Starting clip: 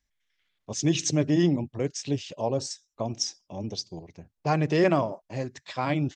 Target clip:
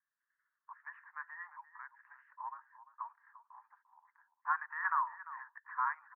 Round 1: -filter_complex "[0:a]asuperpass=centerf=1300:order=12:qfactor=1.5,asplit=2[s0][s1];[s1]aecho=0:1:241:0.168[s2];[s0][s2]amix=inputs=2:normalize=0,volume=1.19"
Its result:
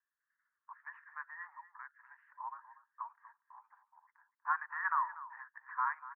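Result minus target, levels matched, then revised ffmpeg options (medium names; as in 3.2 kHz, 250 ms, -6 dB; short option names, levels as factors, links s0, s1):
echo 105 ms early
-filter_complex "[0:a]asuperpass=centerf=1300:order=12:qfactor=1.5,asplit=2[s0][s1];[s1]aecho=0:1:346:0.168[s2];[s0][s2]amix=inputs=2:normalize=0,volume=1.19"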